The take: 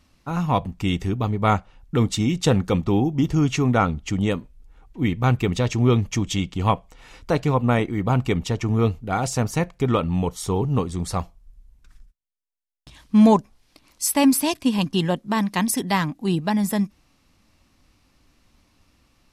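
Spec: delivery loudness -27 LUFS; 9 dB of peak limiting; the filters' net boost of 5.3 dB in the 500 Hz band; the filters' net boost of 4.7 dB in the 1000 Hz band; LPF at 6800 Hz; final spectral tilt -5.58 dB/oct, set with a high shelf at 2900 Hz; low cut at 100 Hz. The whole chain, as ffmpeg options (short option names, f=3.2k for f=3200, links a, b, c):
-af "highpass=100,lowpass=6.8k,equalizer=f=500:t=o:g=5.5,equalizer=f=1k:t=o:g=3.5,highshelf=f=2.9k:g=5,volume=-5dB,alimiter=limit=-14dB:level=0:latency=1"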